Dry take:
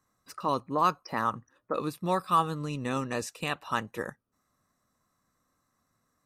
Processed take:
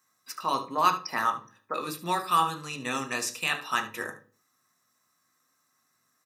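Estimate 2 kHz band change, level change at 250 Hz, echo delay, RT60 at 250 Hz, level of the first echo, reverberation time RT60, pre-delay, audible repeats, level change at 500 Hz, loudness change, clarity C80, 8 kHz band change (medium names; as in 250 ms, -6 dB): +6.0 dB, -4.0 dB, 73 ms, 0.50 s, -15.0 dB, 0.40 s, 3 ms, 1, -3.5 dB, +2.0 dB, 18.5 dB, +8.0 dB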